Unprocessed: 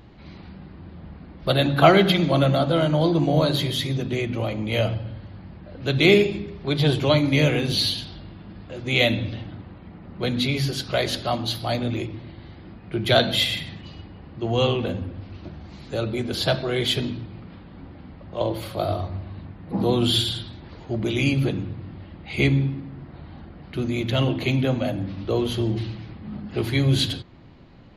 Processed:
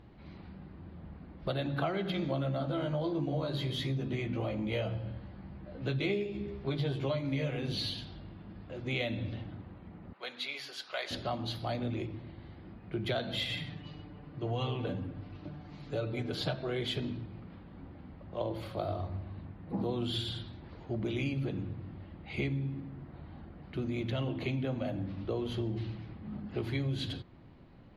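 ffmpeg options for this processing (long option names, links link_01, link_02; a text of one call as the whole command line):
ffmpeg -i in.wav -filter_complex "[0:a]asettb=1/sr,asplit=3[link_01][link_02][link_03];[link_01]atrim=end=2.124[link_04];[link_02]atrim=start=2.12:end=7.57,asetpts=PTS-STARTPTS,afade=type=in:duration=0.004:curve=qsin,afade=type=out:start_time=5.446:duration=0.004:curve=qsin,asplit=2[link_05][link_06];[link_06]adelay=15,volume=-3dB[link_07];[link_05][link_07]amix=inputs=2:normalize=0,atrim=end_sample=240345[link_08];[link_03]atrim=start=7.566[link_09];[link_04][link_08]acrossfade=duration=0.004:curve1=hsin:curve2=qsin[link_10];[link_10][link_09]acrossfade=duration=0.004:curve1=qsin:curve2=hsin,asettb=1/sr,asplit=3[link_11][link_12][link_13];[link_11]atrim=end=10.134[link_14];[link_12]atrim=start=10.13:end=11.11,asetpts=PTS-STARTPTS,afade=type=in:duration=0.004:curve=qsin,afade=type=out:start_time=0.976:duration=0.004:curve=qsin,highpass=910[link_15];[link_13]atrim=start=11.106[link_16];[link_14][link_15]acrossfade=duration=0.004:curve1=hsin:curve2=qsin[link_17];[link_17][link_16]acrossfade=duration=0.004:curve1=qsin:curve2=hsin,asettb=1/sr,asplit=3[link_18][link_19][link_20];[link_18]atrim=end=13.494[link_21];[link_19]atrim=start=13.49:end=16.54,asetpts=PTS-STARTPTS,afade=type=in:duration=0.004:curve=qsin,afade=type=out:start_time=3.046:duration=0.004:curve=qsin,aecho=1:1:6.8:0.66,atrim=end_sample=134505[link_22];[link_20]atrim=start=16.536[link_23];[link_21][link_22]acrossfade=duration=0.004:curve1=hsin:curve2=qsin[link_24];[link_24][link_23]acrossfade=duration=0.004:curve1=qsin:curve2=hsin,lowpass=frequency=2600:poles=1,acompressor=threshold=-23dB:ratio=6,volume=-7dB" out.wav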